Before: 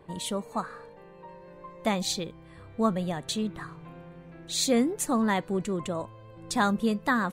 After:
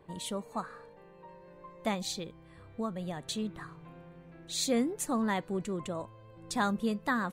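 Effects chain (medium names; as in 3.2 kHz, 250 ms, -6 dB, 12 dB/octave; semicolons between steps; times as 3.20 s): 1.94–3.24 s: compression 2.5:1, threshold -28 dBFS, peak gain reduction 6.5 dB; trim -5 dB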